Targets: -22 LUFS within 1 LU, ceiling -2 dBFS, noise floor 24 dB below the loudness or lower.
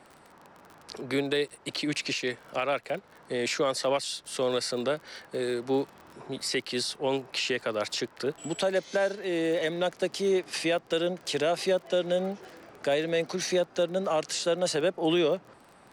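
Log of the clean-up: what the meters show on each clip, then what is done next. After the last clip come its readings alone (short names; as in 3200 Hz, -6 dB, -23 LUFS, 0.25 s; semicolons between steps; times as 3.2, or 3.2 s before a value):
ticks 30/s; loudness -29.0 LUFS; peak -15.5 dBFS; loudness target -22.0 LUFS
-> de-click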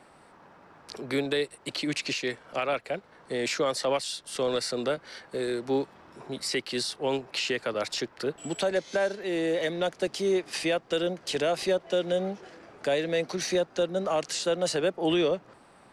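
ticks 0/s; loudness -29.0 LUFS; peak -15.5 dBFS; loudness target -22.0 LUFS
-> gain +7 dB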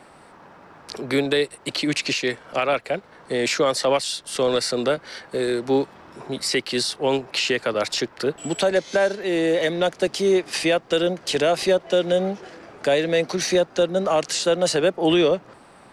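loudness -22.0 LUFS; peak -8.5 dBFS; noise floor -49 dBFS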